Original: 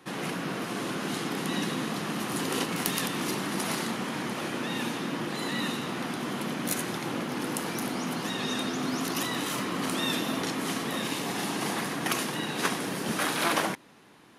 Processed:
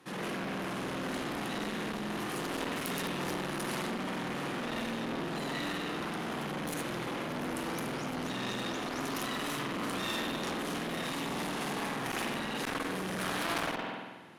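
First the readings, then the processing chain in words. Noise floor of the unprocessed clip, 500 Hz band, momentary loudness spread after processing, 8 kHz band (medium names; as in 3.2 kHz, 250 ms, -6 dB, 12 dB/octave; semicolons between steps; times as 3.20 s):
-36 dBFS, -3.0 dB, 3 LU, -9.0 dB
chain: spring tank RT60 1.2 s, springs 48 ms, chirp 35 ms, DRR -3 dB; one-sided clip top -27.5 dBFS; transformer saturation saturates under 1.9 kHz; trim -4.5 dB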